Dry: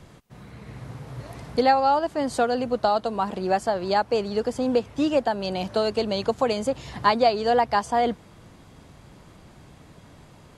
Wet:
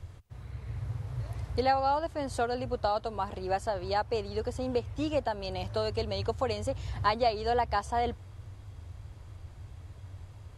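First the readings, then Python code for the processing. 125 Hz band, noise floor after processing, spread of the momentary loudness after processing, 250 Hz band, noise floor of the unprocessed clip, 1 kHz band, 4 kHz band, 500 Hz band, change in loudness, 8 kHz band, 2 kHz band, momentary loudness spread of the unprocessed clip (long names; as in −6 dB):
+2.5 dB, −49 dBFS, 20 LU, −11.0 dB, −51 dBFS, −7.5 dB, −7.0 dB, −8.0 dB, −8.0 dB, −7.0 dB, −7.0 dB, 18 LU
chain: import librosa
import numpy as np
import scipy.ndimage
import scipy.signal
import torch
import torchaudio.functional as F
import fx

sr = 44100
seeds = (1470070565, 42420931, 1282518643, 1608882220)

y = fx.low_shelf_res(x, sr, hz=130.0, db=11.0, q=3.0)
y = y * 10.0 ** (-7.0 / 20.0)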